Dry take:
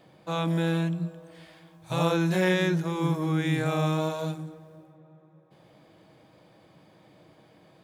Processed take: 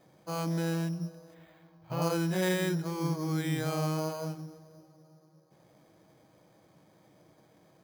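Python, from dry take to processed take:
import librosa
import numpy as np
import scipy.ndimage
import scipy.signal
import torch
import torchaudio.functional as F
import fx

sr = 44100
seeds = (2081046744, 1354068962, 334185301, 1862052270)

y = np.repeat(scipy.signal.resample_poly(x, 1, 8), 8)[:len(x)]
y = fx.peak_eq(y, sr, hz=8500.0, db=-15.0, octaves=1.3, at=(1.34, 2.02))
y = y * librosa.db_to_amplitude(-5.0)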